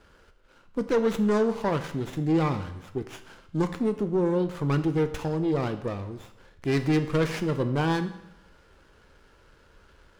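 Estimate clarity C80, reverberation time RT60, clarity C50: 14.0 dB, 0.85 s, 12.0 dB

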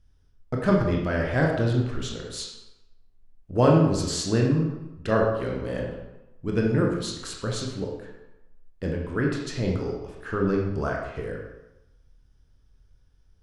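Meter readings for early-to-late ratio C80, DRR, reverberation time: 5.5 dB, −1.0 dB, 0.95 s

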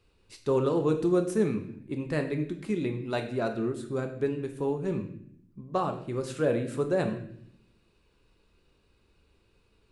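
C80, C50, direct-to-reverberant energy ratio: 12.5 dB, 9.5 dB, 4.5 dB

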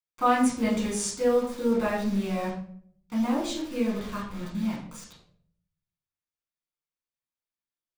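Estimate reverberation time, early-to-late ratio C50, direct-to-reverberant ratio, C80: 0.60 s, 5.0 dB, −6.0 dB, 8.5 dB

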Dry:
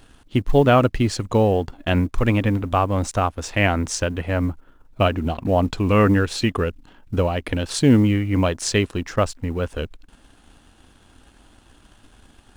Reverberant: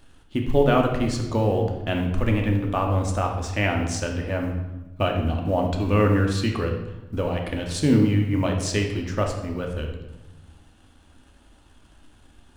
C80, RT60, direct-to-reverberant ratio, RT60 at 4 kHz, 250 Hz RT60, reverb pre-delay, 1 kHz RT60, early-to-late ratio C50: 8.0 dB, 1.0 s, 2.0 dB, 0.80 s, 1.5 s, 3 ms, 0.95 s, 5.0 dB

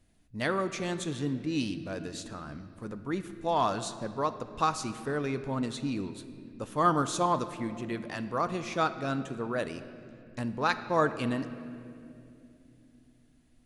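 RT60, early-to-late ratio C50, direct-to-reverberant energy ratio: 2.7 s, 11.5 dB, 10.0 dB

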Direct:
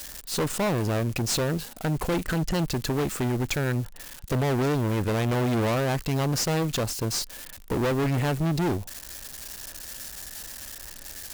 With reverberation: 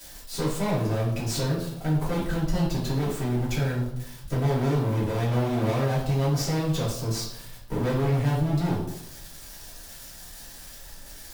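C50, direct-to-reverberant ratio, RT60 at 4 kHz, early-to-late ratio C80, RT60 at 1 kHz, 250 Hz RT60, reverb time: 3.5 dB, −8.5 dB, 0.60 s, 7.5 dB, 0.80 s, 0.90 s, 0.80 s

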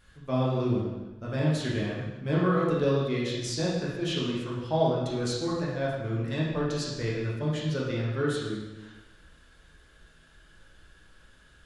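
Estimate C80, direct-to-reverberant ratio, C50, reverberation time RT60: 3.0 dB, −6.5 dB, 0.0 dB, 1.1 s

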